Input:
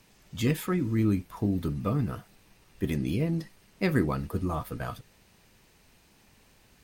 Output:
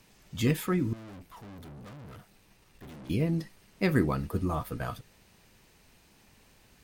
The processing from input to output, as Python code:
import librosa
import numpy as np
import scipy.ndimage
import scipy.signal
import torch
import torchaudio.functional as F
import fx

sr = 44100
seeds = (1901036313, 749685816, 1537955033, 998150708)

y = fx.tube_stage(x, sr, drive_db=45.0, bias=0.5, at=(0.93, 3.1))